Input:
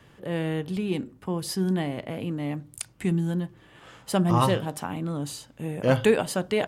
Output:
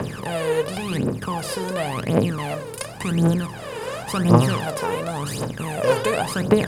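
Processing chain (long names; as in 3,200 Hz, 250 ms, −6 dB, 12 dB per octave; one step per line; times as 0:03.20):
compressor on every frequency bin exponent 0.4
phase shifter 0.92 Hz, delay 2.3 ms, feedback 78%
level −6 dB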